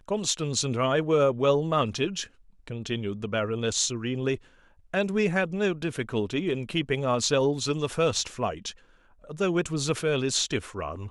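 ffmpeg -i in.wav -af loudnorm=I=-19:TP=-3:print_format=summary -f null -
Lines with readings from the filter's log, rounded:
Input Integrated:    -27.2 LUFS
Input True Peak:      -8.0 dBTP
Input LRA:             2.6 LU
Input Threshold:     -37.8 LUFS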